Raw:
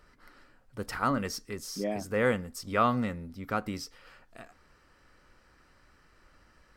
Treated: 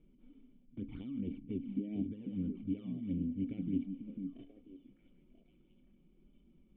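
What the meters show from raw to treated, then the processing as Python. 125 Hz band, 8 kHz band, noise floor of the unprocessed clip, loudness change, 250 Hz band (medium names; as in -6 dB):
-5.0 dB, under -35 dB, -64 dBFS, -8.5 dB, -1.5 dB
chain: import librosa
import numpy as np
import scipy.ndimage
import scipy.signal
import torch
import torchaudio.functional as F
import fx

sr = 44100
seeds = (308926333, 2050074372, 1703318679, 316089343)

y = scipy.ndimage.median_filter(x, 25, mode='constant')
y = fx.over_compress(y, sr, threshold_db=-37.0, ratio=-1.0)
y = fx.vibrato(y, sr, rate_hz=1.3, depth_cents=5.4)
y = fx.env_flanger(y, sr, rest_ms=6.9, full_db=-32.0)
y = fx.formant_cascade(y, sr, vowel='i')
y = fx.echo_stepped(y, sr, ms=492, hz=200.0, octaves=1.4, feedback_pct=70, wet_db=-4.0)
y = y * librosa.db_to_amplitude(6.5)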